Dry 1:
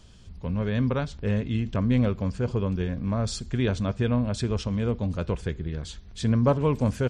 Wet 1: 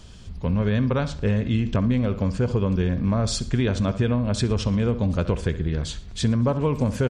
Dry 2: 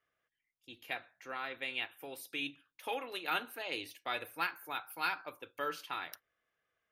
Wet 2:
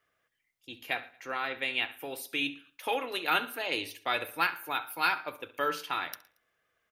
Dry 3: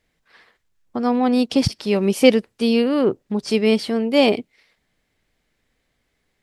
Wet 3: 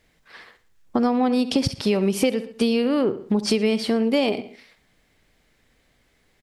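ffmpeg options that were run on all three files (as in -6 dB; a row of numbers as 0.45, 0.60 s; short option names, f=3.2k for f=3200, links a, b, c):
-filter_complex "[0:a]asplit=2[a][b];[b]adelay=67,lowpass=f=4.3k:p=1,volume=-15dB,asplit=2[c][d];[d]adelay=67,lowpass=f=4.3k:p=1,volume=0.28,asplit=2[e][f];[f]adelay=67,lowpass=f=4.3k:p=1,volume=0.28[g];[c][e][g]amix=inputs=3:normalize=0[h];[a][h]amix=inputs=2:normalize=0,acompressor=threshold=-24dB:ratio=12,asplit=2[i][j];[j]aecho=0:1:114|228:0.0631|0.024[k];[i][k]amix=inputs=2:normalize=0,volume=7dB"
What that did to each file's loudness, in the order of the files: +3.0, +7.0, -3.0 LU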